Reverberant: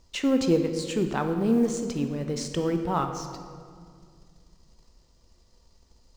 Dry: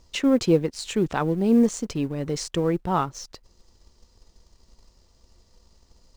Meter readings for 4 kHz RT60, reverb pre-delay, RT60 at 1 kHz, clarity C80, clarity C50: 1.3 s, 19 ms, 1.9 s, 8.5 dB, 7.0 dB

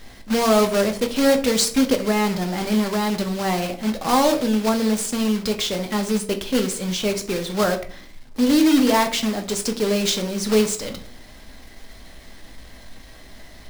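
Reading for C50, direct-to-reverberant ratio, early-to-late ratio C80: 13.0 dB, 5.0 dB, 17.5 dB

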